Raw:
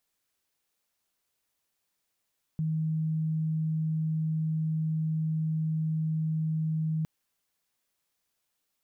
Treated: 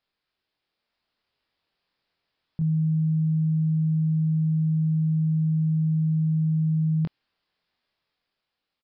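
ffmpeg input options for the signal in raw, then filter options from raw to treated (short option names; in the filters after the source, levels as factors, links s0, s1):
-f lavfi -i "aevalsrc='0.0501*sin(2*PI*158*t)':d=4.46:s=44100"
-filter_complex "[0:a]dynaudnorm=f=270:g=7:m=1.58,aresample=11025,aresample=44100,asplit=2[s0][s1];[s1]adelay=24,volume=0.668[s2];[s0][s2]amix=inputs=2:normalize=0"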